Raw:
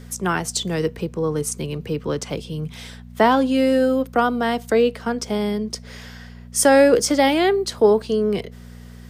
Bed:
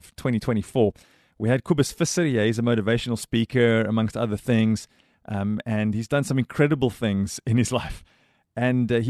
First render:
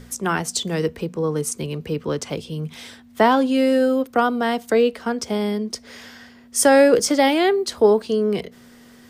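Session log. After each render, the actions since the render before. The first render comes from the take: de-hum 60 Hz, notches 3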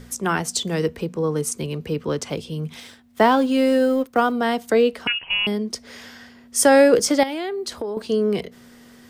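2.8–4.32 G.711 law mismatch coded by A; 5.07–5.47 inverted band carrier 3100 Hz; 7.23–7.97 compressor 10:1, threshold -24 dBFS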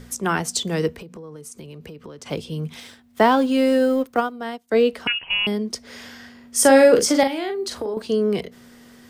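0.91–2.26 compressor 16:1, threshold -34 dBFS; 4.16–4.81 upward expander 2.5:1, over -30 dBFS; 5.88–7.94 doubler 41 ms -6.5 dB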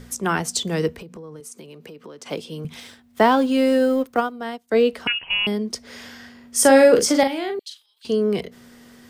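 1.4–2.65 HPF 220 Hz; 7.59–8.05 ladder high-pass 2900 Hz, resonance 65%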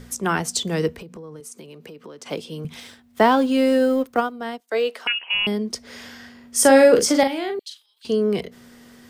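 4.6–5.35 HPF 540 Hz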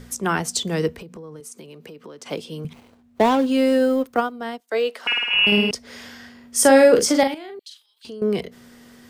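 2.73–3.46 median filter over 25 samples; 4.98–5.71 flutter echo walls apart 9.2 m, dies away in 1.4 s; 7.34–8.22 compressor 3:1, threshold -37 dBFS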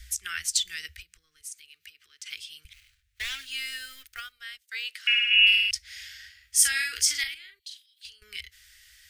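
inverse Chebyshev band-stop 130–1000 Hz, stop band 40 dB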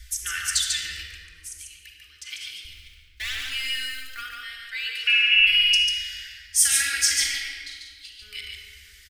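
on a send: echo 0.144 s -4 dB; on the sum: shoebox room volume 3500 m³, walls mixed, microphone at 2.5 m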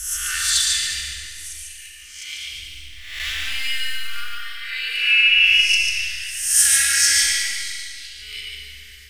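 spectral swells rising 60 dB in 0.77 s; Schroeder reverb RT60 2 s, combs from 29 ms, DRR 2 dB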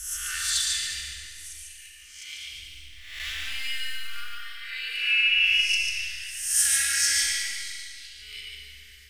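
gain -7 dB

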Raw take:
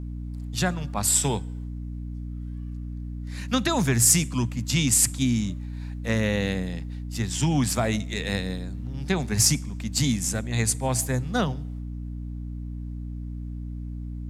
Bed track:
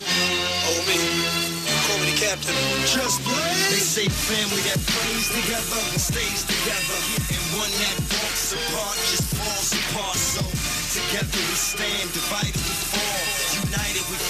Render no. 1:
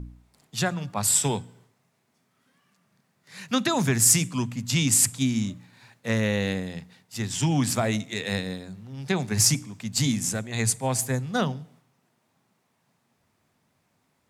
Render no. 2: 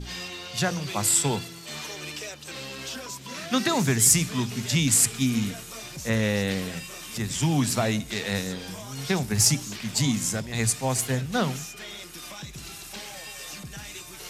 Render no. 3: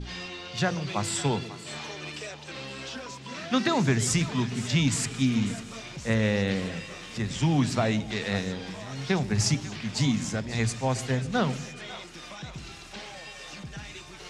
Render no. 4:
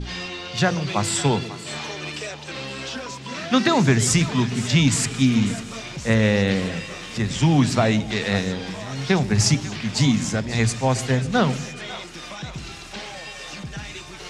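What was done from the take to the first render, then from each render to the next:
de-hum 60 Hz, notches 5
add bed track -15 dB
air absorption 110 m; split-band echo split 600 Hz, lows 0.127 s, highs 0.544 s, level -15 dB
gain +6.5 dB

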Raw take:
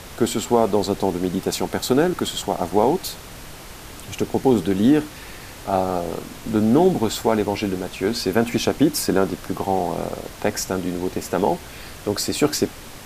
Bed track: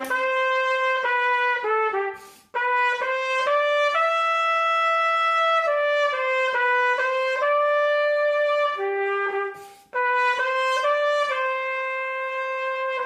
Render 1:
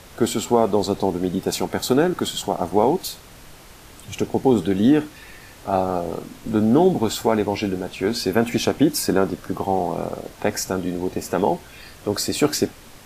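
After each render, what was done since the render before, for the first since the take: noise print and reduce 6 dB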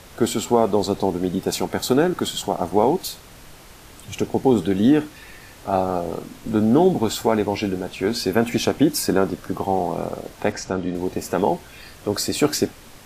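10.52–10.95 air absorption 95 m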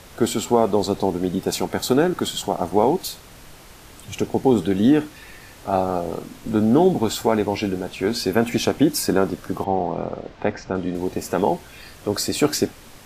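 9.64–10.75 air absorption 180 m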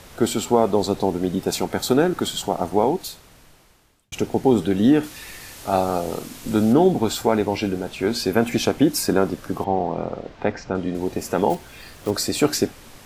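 2.6–4.12 fade out; 5.03–6.73 high shelf 2900 Hz +9.5 dB; 11.5–12.12 block floating point 5-bit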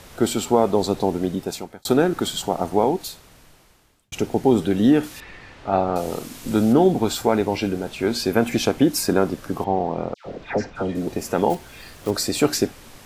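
1.22–1.85 fade out; 5.2–5.96 LPF 2500 Hz; 10.14–11.07 dispersion lows, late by 0.116 s, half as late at 1500 Hz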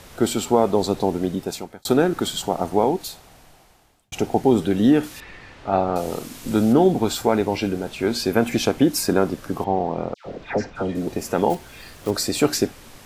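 3.09–4.42 bell 750 Hz +8.5 dB 0.43 oct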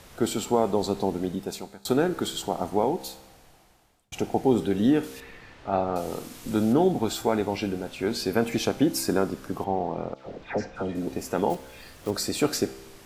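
resonator 66 Hz, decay 1.1 s, harmonics all, mix 50%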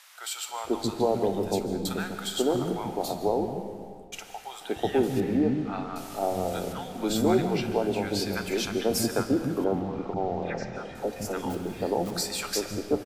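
three bands offset in time highs, mids, lows 0.49/0.64 s, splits 240/940 Hz; digital reverb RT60 1.9 s, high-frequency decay 0.65×, pre-delay 0.105 s, DRR 9 dB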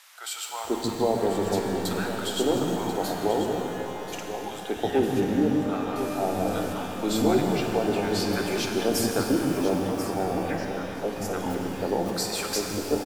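echo 1.038 s -11 dB; shimmer reverb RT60 3.2 s, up +12 st, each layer -8 dB, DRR 4.5 dB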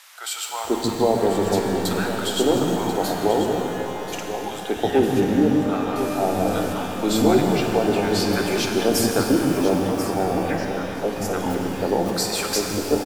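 gain +5 dB

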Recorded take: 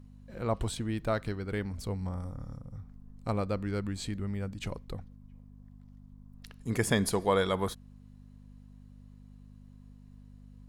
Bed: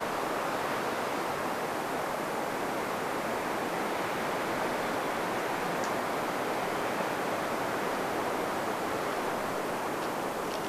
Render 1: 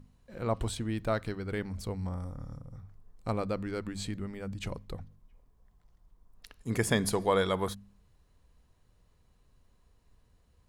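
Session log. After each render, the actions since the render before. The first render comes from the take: de-hum 50 Hz, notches 5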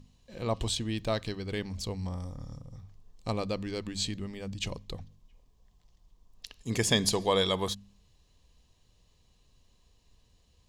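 band shelf 4400 Hz +9.5 dB; notch 1400 Hz, Q 5.4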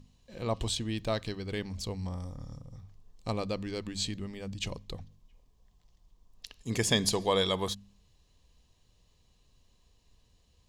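gain -1 dB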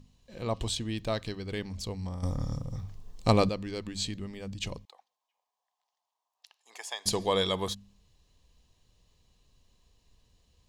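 2.23–3.49 gain +10.5 dB; 4.85–7.06 ladder high-pass 720 Hz, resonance 60%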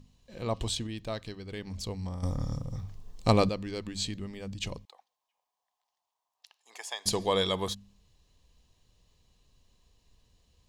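0.87–1.67 gain -4.5 dB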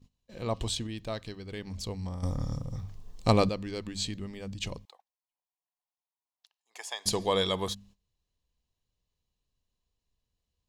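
gate -55 dBFS, range -17 dB

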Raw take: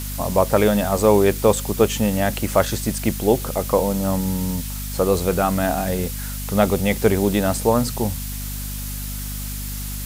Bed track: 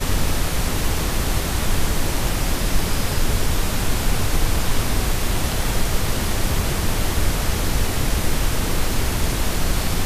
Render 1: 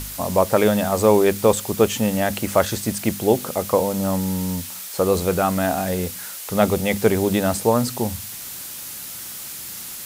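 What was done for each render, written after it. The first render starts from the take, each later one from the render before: de-hum 50 Hz, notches 5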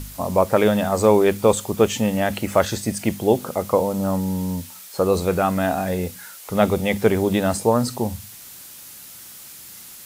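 noise print and reduce 7 dB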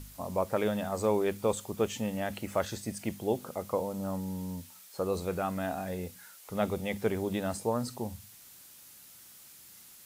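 gain -12.5 dB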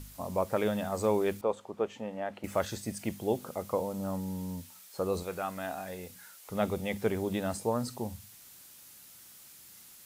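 1.41–2.44 band-pass 730 Hz, Q 0.69; 5.23–6.1 low shelf 410 Hz -9.5 dB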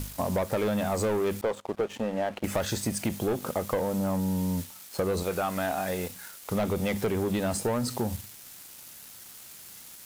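sample leveller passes 3; compressor, threshold -25 dBFS, peak gain reduction 7 dB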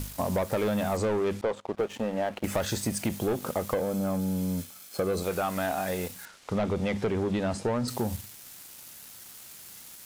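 0.97–1.78 air absorption 57 m; 3.74–5.24 notch comb 940 Hz; 6.25–7.88 air absorption 91 m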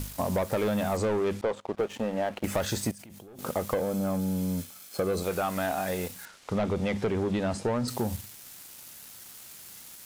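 2.91–3.39 level quantiser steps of 24 dB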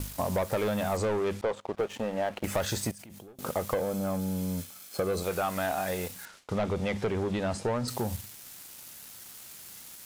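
dynamic EQ 250 Hz, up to -4 dB, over -39 dBFS, Q 1.2; gate with hold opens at -40 dBFS

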